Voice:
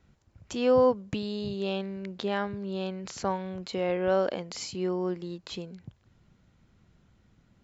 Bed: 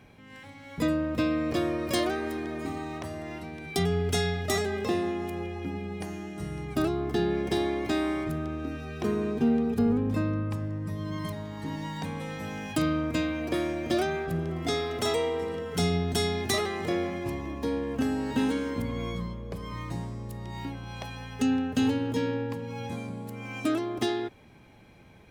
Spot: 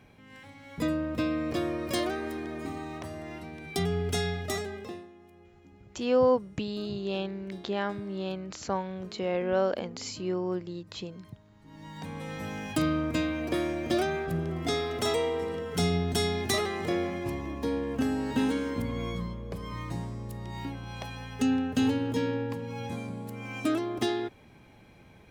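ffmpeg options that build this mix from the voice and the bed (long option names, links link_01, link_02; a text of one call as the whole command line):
ffmpeg -i stem1.wav -i stem2.wav -filter_complex "[0:a]adelay=5450,volume=-1dB[link_01];[1:a]volume=18.5dB,afade=type=out:start_time=4.34:duration=0.74:silence=0.112202,afade=type=in:start_time=11.65:duration=0.75:silence=0.0891251[link_02];[link_01][link_02]amix=inputs=2:normalize=0" out.wav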